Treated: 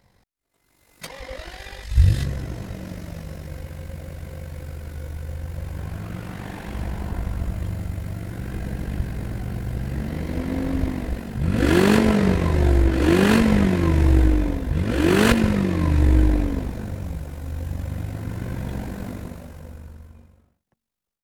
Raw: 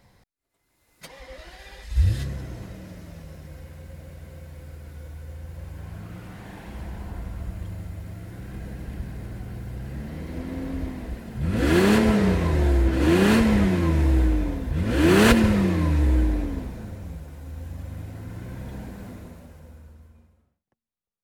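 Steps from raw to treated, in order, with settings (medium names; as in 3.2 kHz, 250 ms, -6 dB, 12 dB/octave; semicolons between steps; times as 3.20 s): level rider gain up to 10.5 dB; AM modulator 48 Hz, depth 45%; trim -1 dB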